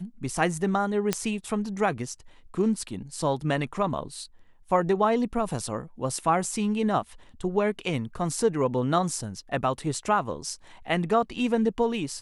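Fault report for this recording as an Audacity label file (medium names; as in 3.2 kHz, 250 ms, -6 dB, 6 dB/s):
1.130000	1.130000	pop -9 dBFS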